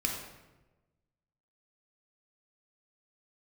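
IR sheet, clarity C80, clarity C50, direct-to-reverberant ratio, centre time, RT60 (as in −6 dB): 5.5 dB, 3.5 dB, 0.0 dB, 44 ms, 1.1 s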